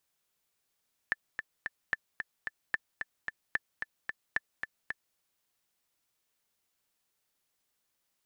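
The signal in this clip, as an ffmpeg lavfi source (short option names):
-f lavfi -i "aevalsrc='pow(10,(-15-6.5*gte(mod(t,3*60/222),60/222))/20)*sin(2*PI*1760*mod(t,60/222))*exp(-6.91*mod(t,60/222)/0.03)':d=4.05:s=44100"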